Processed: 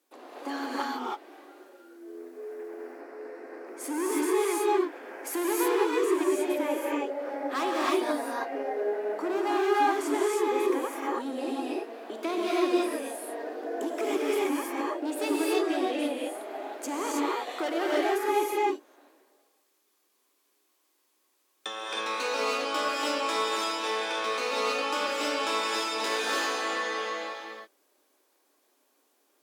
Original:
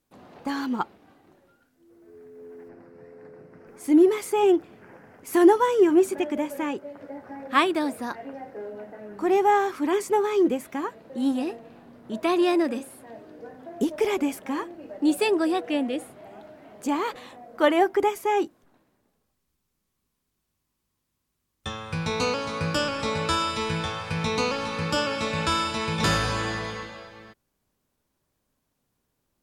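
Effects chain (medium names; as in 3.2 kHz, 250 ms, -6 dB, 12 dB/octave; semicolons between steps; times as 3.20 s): hard clipper -21.5 dBFS, distortion -8 dB; compression 3:1, threshold -37 dBFS, peak gain reduction 10.5 dB; steep high-pass 280 Hz 48 dB/octave; gated-style reverb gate 350 ms rising, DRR -5 dB; trim +3 dB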